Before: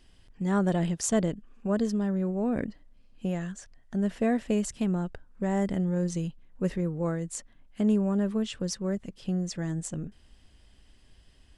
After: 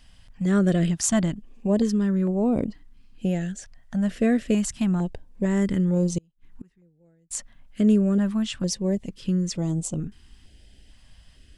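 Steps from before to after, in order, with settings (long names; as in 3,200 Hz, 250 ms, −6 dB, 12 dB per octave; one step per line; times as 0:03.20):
0:06.18–0:07.31: gate with flip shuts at −32 dBFS, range −35 dB
notch on a step sequencer 2.2 Hz 370–1,700 Hz
level +6 dB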